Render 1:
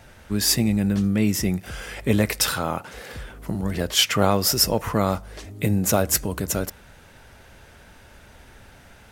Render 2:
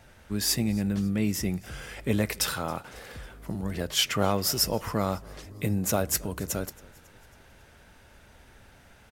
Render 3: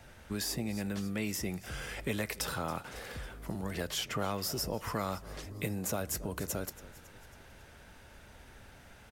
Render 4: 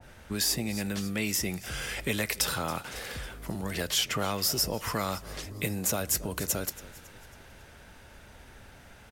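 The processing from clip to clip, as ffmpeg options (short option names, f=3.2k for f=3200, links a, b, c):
-filter_complex "[0:a]asplit=5[a][b][c][d][e];[b]adelay=274,afreqshift=-41,volume=-23.5dB[f];[c]adelay=548,afreqshift=-82,volume=-28.9dB[g];[d]adelay=822,afreqshift=-123,volume=-34.2dB[h];[e]adelay=1096,afreqshift=-164,volume=-39.6dB[i];[a][f][g][h][i]amix=inputs=5:normalize=0,volume=-6dB"
-filter_complex "[0:a]acrossover=split=400|1000[a][b][c];[a]acompressor=threshold=-37dB:ratio=4[d];[b]acompressor=threshold=-39dB:ratio=4[e];[c]acompressor=threshold=-36dB:ratio=4[f];[d][e][f]amix=inputs=3:normalize=0"
-af "adynamicequalizer=threshold=0.00316:dfrequency=1800:dqfactor=0.7:tfrequency=1800:tqfactor=0.7:attack=5:release=100:ratio=0.375:range=3:mode=boostabove:tftype=highshelf,volume=3dB"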